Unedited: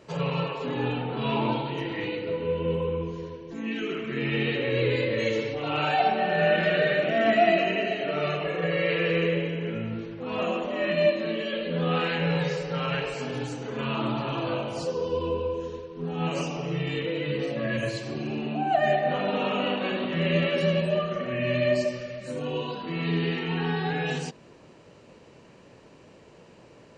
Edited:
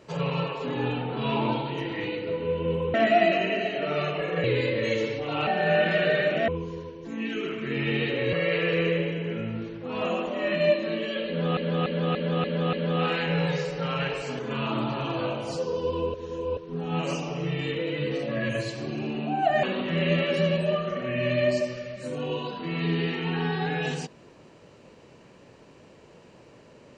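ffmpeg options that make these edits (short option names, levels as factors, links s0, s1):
-filter_complex "[0:a]asplit=15[s0][s1][s2][s3][s4][s5][s6][s7][s8][s9][s10][s11][s12][s13][s14];[s0]atrim=end=2.942[s15];[s1]atrim=start=7.198:end=8.702[s16];[s2]atrim=start=4.788:end=5.822[s17];[s3]atrim=start=6.188:end=7.202[s18];[s4]atrim=start=2.938:end=4.792[s19];[s5]atrim=start=8.698:end=11.942[s20];[s6]atrim=start=11.648:end=11.942[s21];[s7]atrim=start=11.648:end=11.942[s22];[s8]atrim=start=11.648:end=11.942[s23];[s9]atrim=start=11.648:end=11.942[s24];[s10]atrim=start=11.648:end=13.312[s25];[s11]atrim=start=13.668:end=15.422[s26];[s12]atrim=start=15.418:end=15.852,asetpts=PTS-STARTPTS,areverse[s27];[s13]atrim=start=15.848:end=18.912[s28];[s14]atrim=start=19.868[s29];[s15][s16]acrossfade=d=0.004:c1=hsin:c2=hsin[s30];[s30][s17]acrossfade=d=0.004:c1=hsin:c2=hsin[s31];[s31][s18]acrossfade=d=0.004:c1=hsin:c2=hsin[s32];[s32][s19]acrossfade=d=0.004:c1=hsin:c2=hsin[s33];[s33][s20]acrossfade=d=0.004:c1=hsin:c2=hsin[s34];[s34][s21]acrossfade=d=0.004:c1=hsin:c2=hsin[s35];[s35][s22]acrossfade=d=0.004:c1=hsin:c2=hsin[s36];[s36][s23]acrossfade=d=0.004:c1=hsin:c2=hsin[s37];[s37][s24]acrossfade=d=0.004:c1=hsin:c2=hsin[s38];[s38][s25]acrossfade=d=0.004:c1=hsin:c2=hsin[s39];[s39][s26]acrossfade=d=0.004:c1=hsin:c2=hsin[s40];[s40][s27]acrossfade=d=0.004:c1=hsin:c2=hsin[s41];[s41][s28]acrossfade=d=0.004:c1=hsin:c2=hsin[s42];[s42][s29]acrossfade=d=0.004:c1=hsin:c2=hsin"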